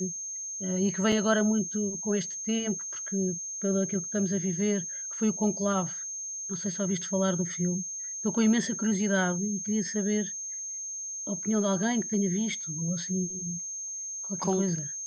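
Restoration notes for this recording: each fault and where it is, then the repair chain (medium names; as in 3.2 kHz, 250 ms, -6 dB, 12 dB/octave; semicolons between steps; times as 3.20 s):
whine 6.4 kHz -34 dBFS
1.12 s: dropout 3.6 ms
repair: band-stop 6.4 kHz, Q 30; interpolate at 1.12 s, 3.6 ms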